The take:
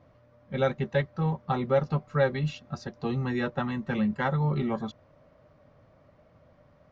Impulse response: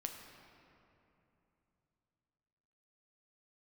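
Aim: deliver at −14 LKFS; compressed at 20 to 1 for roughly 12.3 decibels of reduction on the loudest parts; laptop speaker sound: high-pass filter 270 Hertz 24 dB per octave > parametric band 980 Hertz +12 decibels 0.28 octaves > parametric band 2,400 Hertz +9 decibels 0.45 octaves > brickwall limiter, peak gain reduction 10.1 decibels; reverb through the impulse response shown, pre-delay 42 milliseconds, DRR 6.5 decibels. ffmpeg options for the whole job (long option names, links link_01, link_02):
-filter_complex "[0:a]acompressor=threshold=-31dB:ratio=20,asplit=2[link_01][link_02];[1:a]atrim=start_sample=2205,adelay=42[link_03];[link_02][link_03]afir=irnorm=-1:irlink=0,volume=-5dB[link_04];[link_01][link_04]amix=inputs=2:normalize=0,highpass=frequency=270:width=0.5412,highpass=frequency=270:width=1.3066,equalizer=frequency=980:width_type=o:width=0.28:gain=12,equalizer=frequency=2400:width_type=o:width=0.45:gain=9,volume=26dB,alimiter=limit=-2.5dB:level=0:latency=1"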